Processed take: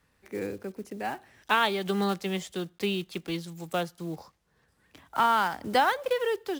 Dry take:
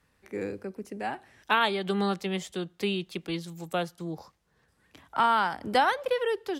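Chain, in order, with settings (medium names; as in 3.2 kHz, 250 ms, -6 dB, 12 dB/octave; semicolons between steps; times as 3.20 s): block-companded coder 5-bit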